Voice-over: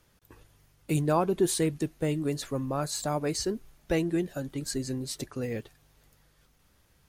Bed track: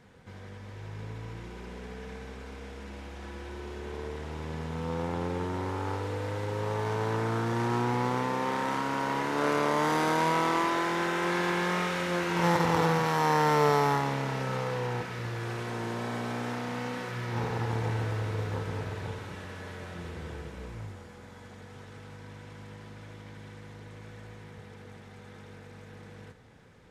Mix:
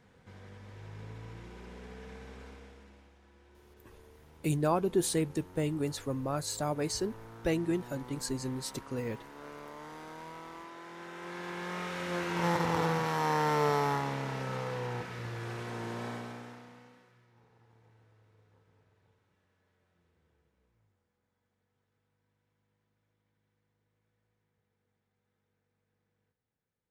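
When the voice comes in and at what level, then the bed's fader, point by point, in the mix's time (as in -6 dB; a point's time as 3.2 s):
3.55 s, -3.0 dB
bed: 2.45 s -5.5 dB
3.22 s -20 dB
10.74 s -20 dB
12.17 s -4.5 dB
16.08 s -4.5 dB
17.36 s -33.5 dB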